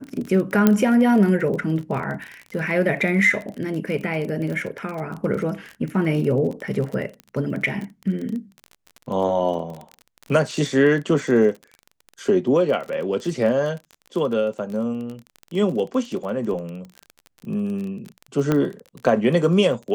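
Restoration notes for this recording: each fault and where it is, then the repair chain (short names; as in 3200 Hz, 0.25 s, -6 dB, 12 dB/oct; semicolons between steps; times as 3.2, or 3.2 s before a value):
crackle 30/s -28 dBFS
0.67 pop -3 dBFS
18.52 pop -8 dBFS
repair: de-click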